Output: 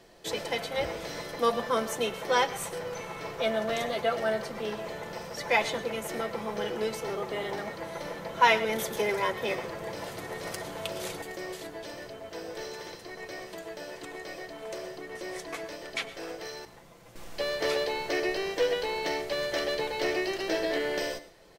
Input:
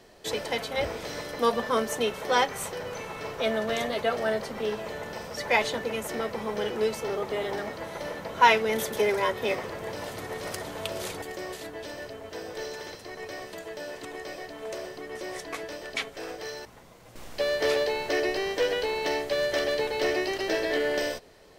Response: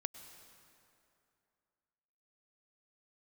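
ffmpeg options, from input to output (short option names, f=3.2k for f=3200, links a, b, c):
-filter_complex "[0:a]aecho=1:1:5.9:0.34[a];[1:a]atrim=start_sample=2205,atrim=end_sample=6174[b];[a][b]afir=irnorm=-1:irlink=0"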